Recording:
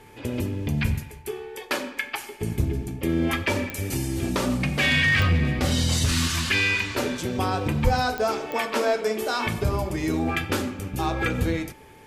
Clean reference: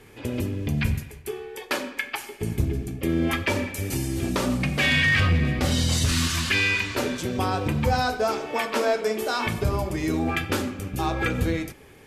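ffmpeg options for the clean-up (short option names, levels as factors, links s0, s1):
-filter_complex "[0:a]adeclick=t=4,bandreject=f=880:w=30,asplit=3[s0][s1][s2];[s0]afade=t=out:st=7.83:d=0.02[s3];[s1]highpass=f=140:w=0.5412,highpass=f=140:w=1.3066,afade=t=in:st=7.83:d=0.02,afade=t=out:st=7.95:d=0.02[s4];[s2]afade=t=in:st=7.95:d=0.02[s5];[s3][s4][s5]amix=inputs=3:normalize=0"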